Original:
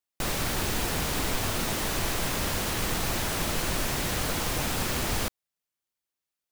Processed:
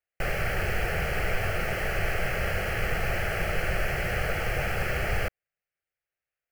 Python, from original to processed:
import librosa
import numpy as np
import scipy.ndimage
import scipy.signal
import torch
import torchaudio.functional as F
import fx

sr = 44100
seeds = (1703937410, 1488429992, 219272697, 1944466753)

y = fx.high_shelf_res(x, sr, hz=4900.0, db=-13.0, q=1.5)
y = fx.fixed_phaser(y, sr, hz=1000.0, stages=6)
y = y * 10.0 ** (4.0 / 20.0)